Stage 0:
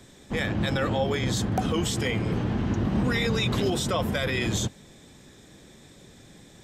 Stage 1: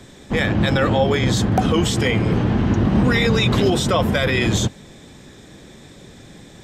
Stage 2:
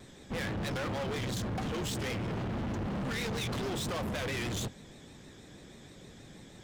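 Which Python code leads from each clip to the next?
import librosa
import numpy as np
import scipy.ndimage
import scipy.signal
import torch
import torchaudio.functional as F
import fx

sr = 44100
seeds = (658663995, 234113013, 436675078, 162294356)

y1 = fx.high_shelf(x, sr, hz=6500.0, db=-6.5)
y1 = y1 * 10.0 ** (8.5 / 20.0)
y2 = fx.vibrato(y1, sr, rate_hz=6.3, depth_cents=85.0)
y2 = np.clip(10.0 ** (24.0 / 20.0) * y2, -1.0, 1.0) / 10.0 ** (24.0 / 20.0)
y2 = y2 * 10.0 ** (-9.0 / 20.0)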